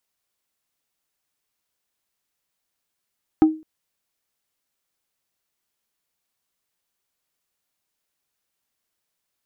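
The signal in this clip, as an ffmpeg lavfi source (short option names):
-f lavfi -i "aevalsrc='0.447*pow(10,-3*t/0.32)*sin(2*PI*314*t)+0.126*pow(10,-3*t/0.107)*sin(2*PI*785*t)+0.0355*pow(10,-3*t/0.061)*sin(2*PI*1256*t)+0.01*pow(10,-3*t/0.046)*sin(2*PI*1570*t)+0.00282*pow(10,-3*t/0.034)*sin(2*PI*2041*t)':d=0.21:s=44100"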